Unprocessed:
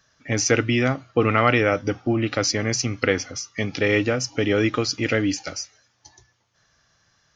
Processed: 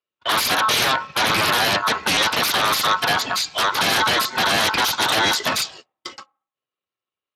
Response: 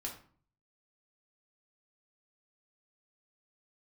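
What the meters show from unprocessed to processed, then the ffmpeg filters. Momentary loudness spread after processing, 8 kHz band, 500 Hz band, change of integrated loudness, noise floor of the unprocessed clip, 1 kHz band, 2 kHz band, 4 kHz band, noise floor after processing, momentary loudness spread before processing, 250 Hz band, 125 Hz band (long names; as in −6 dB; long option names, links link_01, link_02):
5 LU, +3.0 dB, −4.5 dB, +4.0 dB, −67 dBFS, +9.5 dB, +5.5 dB, +11.5 dB, below −85 dBFS, 10 LU, −8.0 dB, −9.5 dB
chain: -filter_complex "[0:a]agate=range=-45dB:threshold=-51dB:ratio=16:detection=peak,alimiter=limit=-14.5dB:level=0:latency=1:release=453,aeval=exprs='val(0)*sin(2*PI*1200*n/s)':channel_layout=same,aeval=exprs='0.188*sin(PI/2*7.08*val(0)/0.188)':channel_layout=same,asplit=2[link_01][link_02];[link_02]highpass=320,equalizer=frequency=390:width_type=q:width=4:gain=-8,equalizer=frequency=750:width_type=q:width=4:gain=9,equalizer=frequency=1500:width_type=q:width=4:gain=-5,lowpass=frequency=2200:width=0.5412,lowpass=frequency=2200:width=1.3066[link_03];[1:a]atrim=start_sample=2205[link_04];[link_03][link_04]afir=irnorm=-1:irlink=0,volume=-19.5dB[link_05];[link_01][link_05]amix=inputs=2:normalize=0,volume=1dB" -ar 32000 -c:a libspeex -b:a 24k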